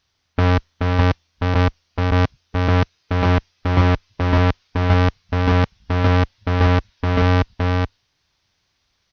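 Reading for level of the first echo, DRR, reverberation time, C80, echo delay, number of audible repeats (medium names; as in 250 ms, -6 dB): -3.5 dB, no reverb, no reverb, no reverb, 427 ms, 1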